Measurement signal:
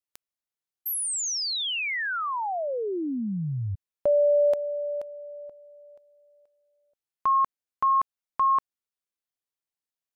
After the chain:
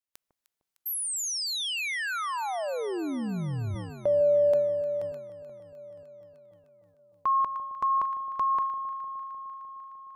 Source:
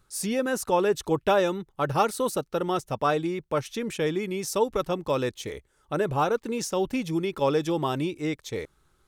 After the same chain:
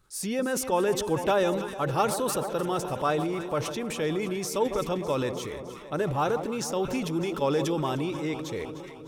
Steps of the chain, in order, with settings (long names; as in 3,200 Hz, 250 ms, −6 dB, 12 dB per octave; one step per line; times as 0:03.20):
delay that swaps between a low-pass and a high-pass 152 ms, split 1,000 Hz, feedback 84%, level −13 dB
transient designer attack 0 dB, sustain +7 dB
level −2.5 dB